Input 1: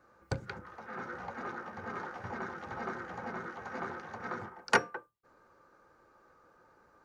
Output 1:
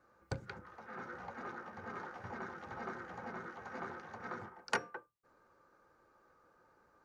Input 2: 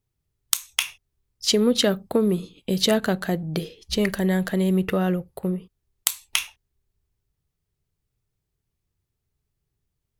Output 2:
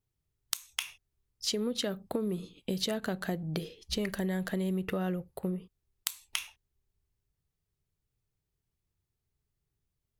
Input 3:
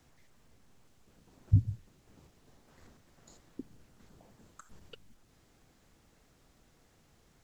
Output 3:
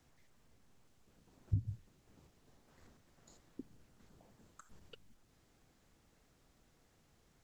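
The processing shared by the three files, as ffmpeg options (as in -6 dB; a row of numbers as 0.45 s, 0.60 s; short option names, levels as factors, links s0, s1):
-af "acompressor=threshold=0.0631:ratio=6,volume=0.562"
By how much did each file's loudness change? -6.5 LU, -11.0 LU, -10.0 LU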